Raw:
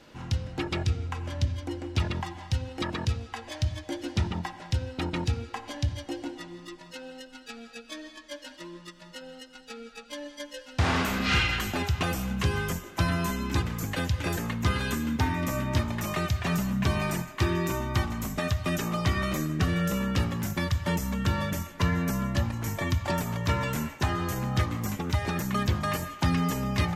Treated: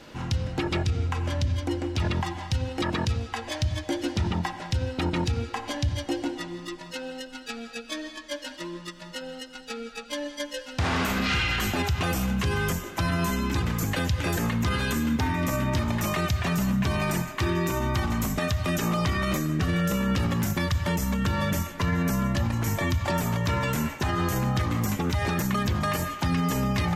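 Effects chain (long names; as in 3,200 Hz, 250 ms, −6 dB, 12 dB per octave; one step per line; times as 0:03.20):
brickwall limiter −24 dBFS, peak gain reduction 9.5 dB
level +6.5 dB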